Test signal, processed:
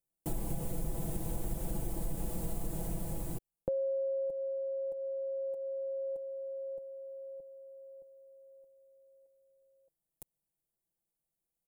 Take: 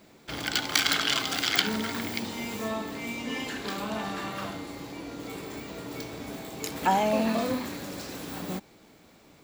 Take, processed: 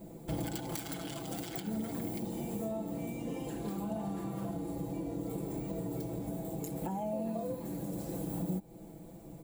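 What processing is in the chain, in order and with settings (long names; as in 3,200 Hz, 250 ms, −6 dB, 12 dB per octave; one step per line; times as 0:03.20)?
low-shelf EQ 200 Hz +9.5 dB
comb filter 6 ms, depth 80%
downward compressor 4 to 1, threshold −34 dBFS
flat-topped bell 2,600 Hz −15.5 dB 2.8 octaves
speech leveller within 3 dB 2 s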